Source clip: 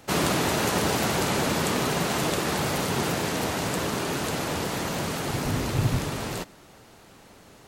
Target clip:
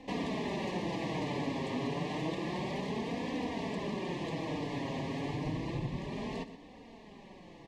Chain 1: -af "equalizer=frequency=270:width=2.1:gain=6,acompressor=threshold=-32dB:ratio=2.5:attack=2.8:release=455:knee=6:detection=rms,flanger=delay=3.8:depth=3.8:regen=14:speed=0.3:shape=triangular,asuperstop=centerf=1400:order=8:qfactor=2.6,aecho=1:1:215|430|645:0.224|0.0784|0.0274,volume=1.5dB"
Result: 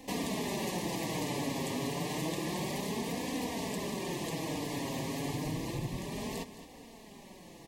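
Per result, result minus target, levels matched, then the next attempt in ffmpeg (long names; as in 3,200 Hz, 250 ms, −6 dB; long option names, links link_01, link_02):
echo 93 ms late; 4,000 Hz band +3.0 dB
-af "equalizer=frequency=270:width=2.1:gain=6,acompressor=threshold=-32dB:ratio=2.5:attack=2.8:release=455:knee=6:detection=rms,flanger=delay=3.8:depth=3.8:regen=14:speed=0.3:shape=triangular,asuperstop=centerf=1400:order=8:qfactor=2.6,aecho=1:1:122|244|366:0.224|0.0784|0.0274,volume=1.5dB"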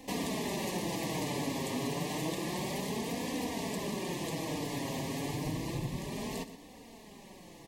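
4,000 Hz band +3.0 dB
-af "equalizer=frequency=270:width=2.1:gain=6,acompressor=threshold=-32dB:ratio=2.5:attack=2.8:release=455:knee=6:detection=rms,lowpass=3400,flanger=delay=3.8:depth=3.8:regen=14:speed=0.3:shape=triangular,asuperstop=centerf=1400:order=8:qfactor=2.6,aecho=1:1:122|244|366:0.224|0.0784|0.0274,volume=1.5dB"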